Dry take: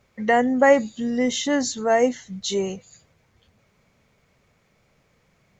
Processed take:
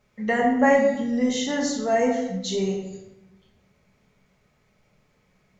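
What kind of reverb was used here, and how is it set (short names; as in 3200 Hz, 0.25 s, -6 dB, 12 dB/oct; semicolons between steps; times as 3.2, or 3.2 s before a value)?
shoebox room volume 410 m³, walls mixed, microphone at 1.4 m; gain -5.5 dB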